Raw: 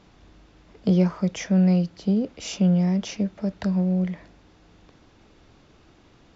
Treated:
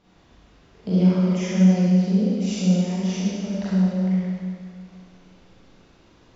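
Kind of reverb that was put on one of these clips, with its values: Schroeder reverb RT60 2.1 s, combs from 33 ms, DRR -9.5 dB; gain -8.5 dB

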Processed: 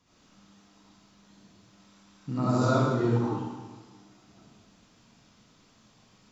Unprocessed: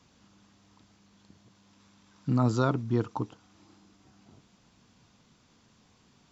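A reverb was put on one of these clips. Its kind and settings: digital reverb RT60 1.3 s, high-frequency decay 1×, pre-delay 30 ms, DRR -10 dB; gain -7 dB

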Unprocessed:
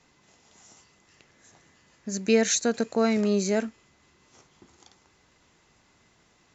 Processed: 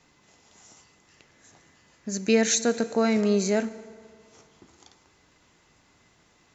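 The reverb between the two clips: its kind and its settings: FDN reverb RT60 2.1 s, low-frequency decay 0.85×, high-frequency decay 0.6×, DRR 13.5 dB; gain +1 dB

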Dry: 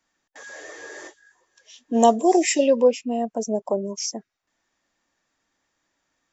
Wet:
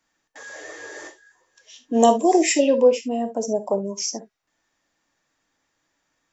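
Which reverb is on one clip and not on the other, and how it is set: non-linear reverb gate 90 ms flat, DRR 8.5 dB; gain +1 dB

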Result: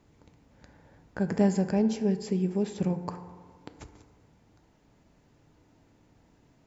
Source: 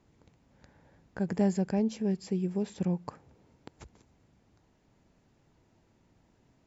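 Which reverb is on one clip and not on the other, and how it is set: FDN reverb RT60 1.6 s, low-frequency decay 0.75×, high-frequency decay 0.35×, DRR 8 dB; gain +3.5 dB

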